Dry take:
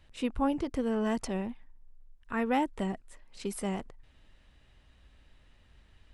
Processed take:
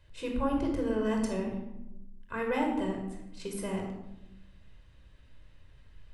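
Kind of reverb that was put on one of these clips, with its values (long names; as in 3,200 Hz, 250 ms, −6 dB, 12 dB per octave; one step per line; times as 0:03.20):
rectangular room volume 3,000 cubic metres, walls furnished, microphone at 5.1 metres
level −4.5 dB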